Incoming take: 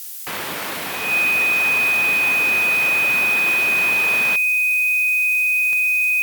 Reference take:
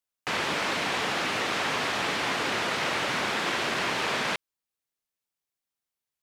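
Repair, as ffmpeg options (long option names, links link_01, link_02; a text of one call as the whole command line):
ffmpeg -i in.wav -af "adeclick=threshold=4,bandreject=frequency=2500:width=30,afftdn=noise_reduction=30:noise_floor=-27" out.wav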